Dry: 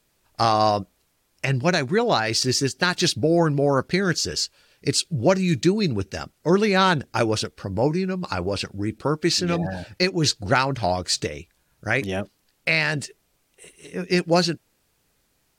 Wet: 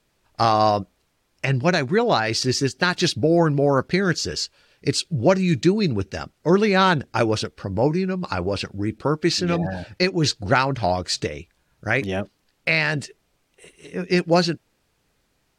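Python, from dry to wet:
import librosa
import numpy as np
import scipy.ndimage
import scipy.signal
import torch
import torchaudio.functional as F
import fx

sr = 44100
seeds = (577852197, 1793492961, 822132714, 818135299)

y = fx.high_shelf(x, sr, hz=7900.0, db=-11.5)
y = y * librosa.db_to_amplitude(1.5)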